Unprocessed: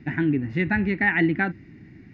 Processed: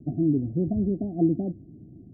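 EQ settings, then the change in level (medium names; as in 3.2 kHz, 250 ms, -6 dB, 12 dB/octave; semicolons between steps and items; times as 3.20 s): Chebyshev low-pass 730 Hz, order 10; 0.0 dB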